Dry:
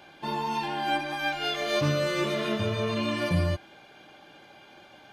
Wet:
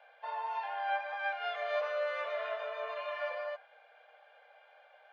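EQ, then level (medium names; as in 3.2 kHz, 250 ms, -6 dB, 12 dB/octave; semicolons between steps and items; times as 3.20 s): dynamic bell 1.1 kHz, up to +4 dB, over -43 dBFS, Q 1.2; rippled Chebyshev high-pass 470 Hz, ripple 6 dB; tape spacing loss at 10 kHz 37 dB; 0.0 dB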